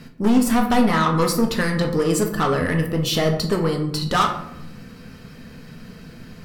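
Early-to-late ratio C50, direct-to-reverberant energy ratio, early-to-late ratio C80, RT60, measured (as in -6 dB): 8.5 dB, 2.5 dB, 11.5 dB, 0.80 s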